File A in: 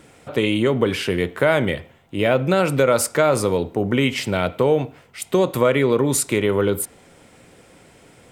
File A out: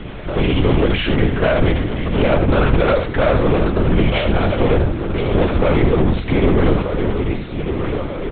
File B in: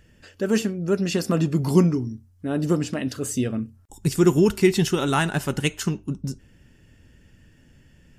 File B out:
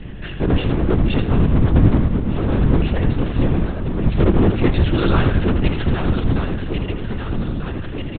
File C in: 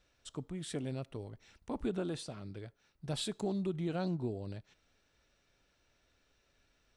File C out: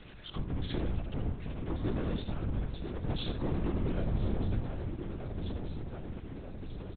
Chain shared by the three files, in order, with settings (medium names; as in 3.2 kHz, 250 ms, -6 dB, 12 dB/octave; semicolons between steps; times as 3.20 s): backward echo that repeats 621 ms, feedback 60%, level -11.5 dB; peaking EQ 110 Hz +12 dB 1.7 oct; power-law waveshaper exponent 0.5; on a send: delay 79 ms -8 dB; on the sum: LPC vocoder at 8 kHz whisper; trim -6 dB